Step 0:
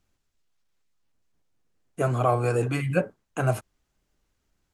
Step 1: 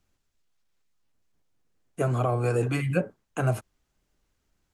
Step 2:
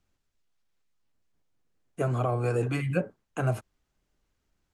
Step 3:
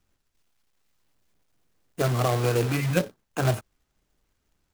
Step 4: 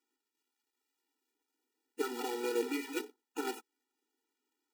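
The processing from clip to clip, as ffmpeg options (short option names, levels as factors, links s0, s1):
-filter_complex "[0:a]acrossover=split=450[s0][s1];[s1]acompressor=threshold=0.0447:ratio=6[s2];[s0][s2]amix=inputs=2:normalize=0"
-af "highshelf=f=7400:g=-5,volume=0.794"
-af "acrusher=bits=2:mode=log:mix=0:aa=0.000001,volume=1.41"
-af "afftfilt=real='re*eq(mod(floor(b*sr/1024/250),2),1)':imag='im*eq(mod(floor(b*sr/1024/250),2),1)':win_size=1024:overlap=0.75,volume=0.501"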